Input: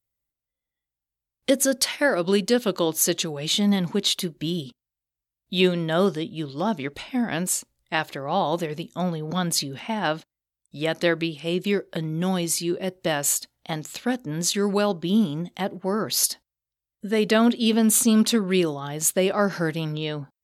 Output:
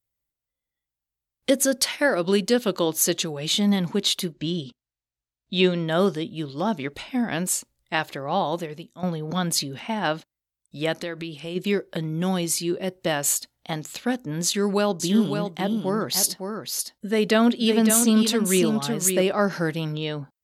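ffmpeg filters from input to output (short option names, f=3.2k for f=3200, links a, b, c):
-filter_complex "[0:a]asettb=1/sr,asplit=3[a][b][c];[a]atrim=end=4.324[d];[b]atrim=start=4.32:end=5.88,asetpts=PTS-STARTPTS,afade=t=in:d=0.004:c=qsin,afade=t=out:st=1.556:d=0.004:c=qsin,lowpass=f=7.3k:w=0.5412,lowpass=f=7.3k:w=1.3066[e];[c]atrim=start=5.876[f];[d][e]acrossfade=d=0.004:c1=hsin:c2=qsin[g];[g][f]acrossfade=d=0.004:c1=qsin:c2=hsin,asplit=3[h][i][j];[h]afade=t=out:st=10.96:d=0.02[k];[i]acompressor=threshold=-30dB:ratio=3:attack=3.2:release=140:knee=1:detection=peak,afade=t=in:st=10.96:d=0.02,afade=t=out:st=11.55:d=0.02[l];[j]afade=t=in:st=11.55:d=0.02[m];[k][l][m]amix=inputs=3:normalize=0,asettb=1/sr,asplit=3[n][o][p];[n]atrim=end=14.444[q];[o]atrim=start=14.44:end=19.22,asetpts=PTS-STARTPTS,afade=t=in:d=0.004:c=qsin,afade=t=out:st=4.776:d=0.004:c=qsin,aecho=1:1:557:0.473,atrim=end_sample=210798[r];[p]atrim=start=19.216[s];[q][r]acrossfade=d=0.004:c1=hsin:c2=qsin[t];[t][s]acrossfade=d=0.004:c1=qsin:c2=hsin,asplit=2[u][v];[u]atrim=end=9.03,asetpts=PTS-STARTPTS,afade=t=out:st=8.34:d=0.69:silence=0.223872[w];[v]atrim=start=9.03,asetpts=PTS-STARTPTS,afade=t=in:d=0.004:c=hsin:silence=0.223872[x];[w][x]concat=n=2:v=0:a=1"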